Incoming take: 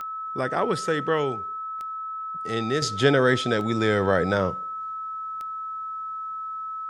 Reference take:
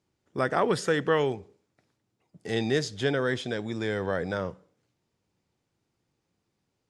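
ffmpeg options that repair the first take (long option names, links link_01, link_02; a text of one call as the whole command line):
ffmpeg -i in.wav -af "adeclick=threshold=4,bandreject=frequency=1300:width=30,asetnsamples=nb_out_samples=441:pad=0,asendcmd='2.82 volume volume -7.5dB',volume=0dB" out.wav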